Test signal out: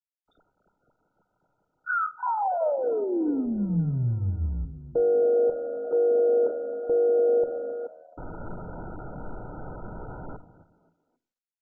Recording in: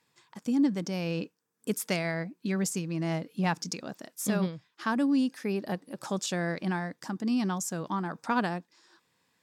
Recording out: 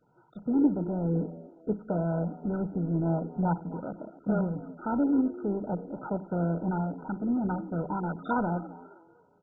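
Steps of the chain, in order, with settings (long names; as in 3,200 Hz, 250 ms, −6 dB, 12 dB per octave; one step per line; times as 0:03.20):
mu-law and A-law mismatch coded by mu
on a send: echo with shifted repeats 265 ms, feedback 32%, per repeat +78 Hz, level −17.5 dB
on the sum: rectangular room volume 410 cubic metres, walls furnished, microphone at 0.51 metres
MP2 8 kbit/s 16,000 Hz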